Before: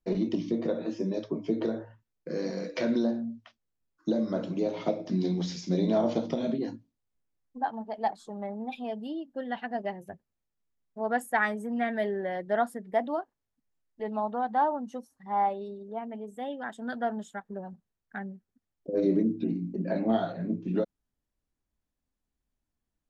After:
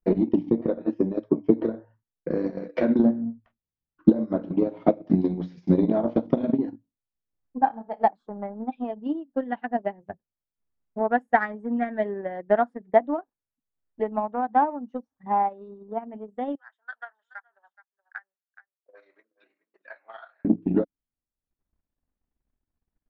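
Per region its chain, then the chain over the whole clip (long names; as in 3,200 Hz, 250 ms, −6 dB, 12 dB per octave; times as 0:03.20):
0:02.99–0:04.10: bass and treble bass +9 dB, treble −5 dB + windowed peak hold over 5 samples
0:07.58–0:08.06: hum removal 210 Hz, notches 34 + flutter between parallel walls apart 5.2 metres, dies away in 0.27 s
0:16.55–0:20.45: four-pole ladder high-pass 1,100 Hz, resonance 35% + single-tap delay 423 ms −14.5 dB
whole clip: low-pass filter 1,800 Hz 12 dB per octave; dynamic equaliser 280 Hz, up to +7 dB, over −46 dBFS, Q 4.3; transient designer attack +10 dB, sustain −9 dB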